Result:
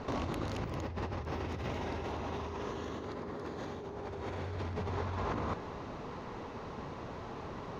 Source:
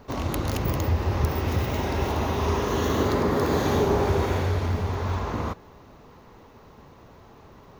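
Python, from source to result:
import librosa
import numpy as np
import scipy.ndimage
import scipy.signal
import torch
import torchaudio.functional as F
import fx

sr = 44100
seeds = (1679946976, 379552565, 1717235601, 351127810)

y = fx.low_shelf(x, sr, hz=70.0, db=-8.0)
y = fx.over_compress(y, sr, threshold_db=-36.0, ratio=-1.0)
y = fx.air_absorb(y, sr, metres=81.0)
y = F.gain(torch.from_numpy(y), -2.0).numpy()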